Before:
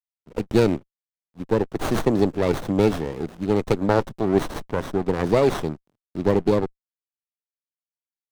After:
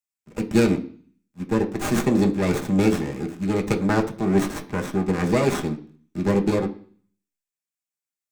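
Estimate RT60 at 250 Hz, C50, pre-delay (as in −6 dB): 0.55 s, 14.5 dB, 3 ms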